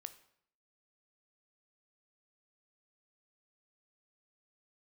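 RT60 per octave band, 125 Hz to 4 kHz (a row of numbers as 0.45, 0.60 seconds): 0.75, 0.70, 0.65, 0.65, 0.60, 0.55 seconds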